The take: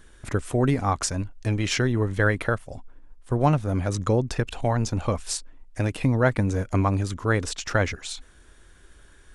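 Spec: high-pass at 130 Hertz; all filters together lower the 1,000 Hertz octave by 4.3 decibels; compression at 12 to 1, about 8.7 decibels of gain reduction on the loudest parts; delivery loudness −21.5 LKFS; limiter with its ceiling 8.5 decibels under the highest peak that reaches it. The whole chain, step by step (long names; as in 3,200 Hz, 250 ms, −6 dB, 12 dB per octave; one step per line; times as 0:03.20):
high-pass filter 130 Hz
parametric band 1,000 Hz −6 dB
downward compressor 12 to 1, threshold −26 dBFS
level +13 dB
brickwall limiter −8.5 dBFS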